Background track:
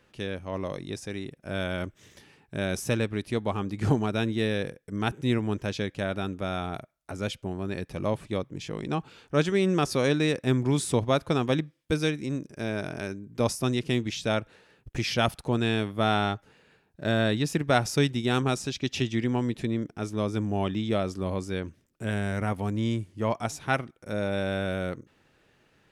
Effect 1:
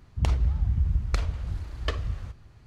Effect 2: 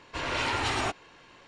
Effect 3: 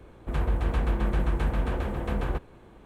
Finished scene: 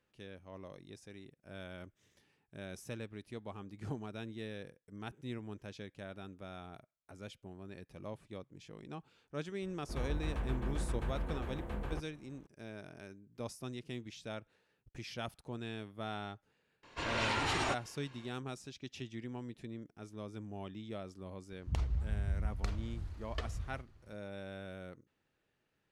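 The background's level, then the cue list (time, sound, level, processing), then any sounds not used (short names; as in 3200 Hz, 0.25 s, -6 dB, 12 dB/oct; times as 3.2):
background track -17 dB
9.62 add 3 -11.5 dB
16.83 add 2 -5 dB
21.5 add 1 -10.5 dB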